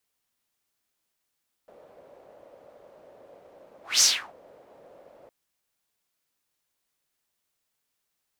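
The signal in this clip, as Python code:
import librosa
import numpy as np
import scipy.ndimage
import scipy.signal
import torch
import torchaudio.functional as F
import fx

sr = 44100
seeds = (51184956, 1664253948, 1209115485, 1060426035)

y = fx.whoosh(sr, seeds[0], length_s=3.61, peak_s=2.34, rise_s=0.21, fall_s=0.34, ends_hz=560.0, peak_hz=6100.0, q=4.5, swell_db=35.0)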